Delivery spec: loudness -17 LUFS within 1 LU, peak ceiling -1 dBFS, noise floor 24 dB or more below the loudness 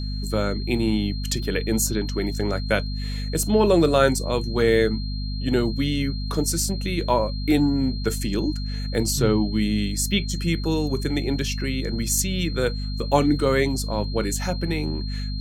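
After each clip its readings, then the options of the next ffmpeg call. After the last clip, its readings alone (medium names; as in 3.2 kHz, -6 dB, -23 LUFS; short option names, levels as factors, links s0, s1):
hum 50 Hz; highest harmonic 250 Hz; hum level -26 dBFS; steady tone 4.2 kHz; tone level -37 dBFS; loudness -23.5 LUFS; peak level -3.5 dBFS; loudness target -17.0 LUFS
-> -af "bandreject=f=50:t=h:w=4,bandreject=f=100:t=h:w=4,bandreject=f=150:t=h:w=4,bandreject=f=200:t=h:w=4,bandreject=f=250:t=h:w=4"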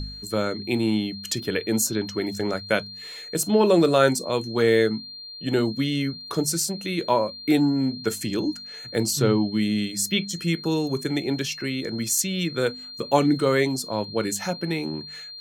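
hum not found; steady tone 4.2 kHz; tone level -37 dBFS
-> -af "bandreject=f=4200:w=30"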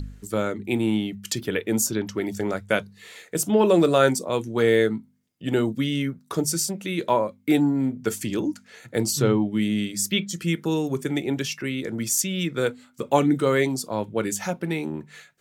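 steady tone not found; loudness -24.0 LUFS; peak level -4.5 dBFS; loudness target -17.0 LUFS
-> -af "volume=2.24,alimiter=limit=0.891:level=0:latency=1"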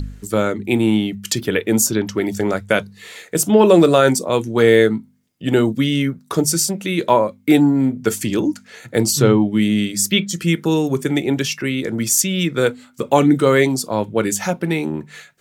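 loudness -17.5 LUFS; peak level -1.0 dBFS; noise floor -50 dBFS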